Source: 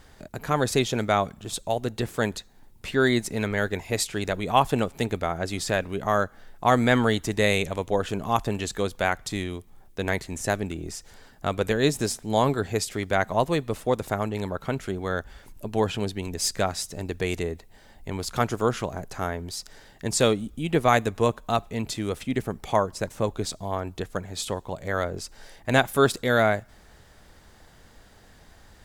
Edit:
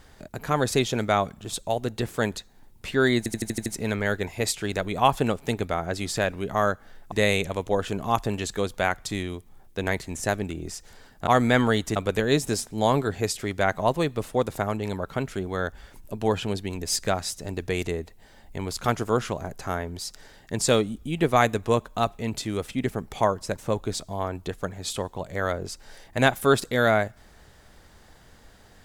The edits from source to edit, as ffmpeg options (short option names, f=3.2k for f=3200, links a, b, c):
-filter_complex "[0:a]asplit=10[a][b][c][d][e][f][g][h][i][j];[a]atrim=end=3.262[k];[b]atrim=start=3.178:end=3.262[l];[c]atrim=start=3.178:end=3.262[m];[d]atrim=start=3.178:end=3.262[n];[e]atrim=start=3.178:end=3.262[o];[f]atrim=start=3.178:end=3.262[p];[g]atrim=start=3.178:end=6.642[q];[h]atrim=start=7.328:end=11.482[r];[i]atrim=start=6.638:end=7.332[s];[j]atrim=start=11.478[t];[k][l]acrossfade=d=0.004:c1=hsin:c2=hsin[u];[u][m]acrossfade=d=0.004:c1=hsin:c2=hsin[v];[v][n]acrossfade=d=0.004:c1=hsin:c2=hsin[w];[w][o]acrossfade=d=0.004:c1=hsin:c2=hsin[x];[x][p]acrossfade=d=0.004:c1=hsin:c2=hsin[y];[y][q]acrossfade=d=0.004:c1=hsin:c2=hsin[z];[z][r]acrossfade=d=0.004:c1=hsin:c2=hsin[aa];[aa][s]acrossfade=d=0.004:c1=hsin:c2=hsin[ab];[ab][t]acrossfade=d=0.004:c1=hsin:c2=hsin"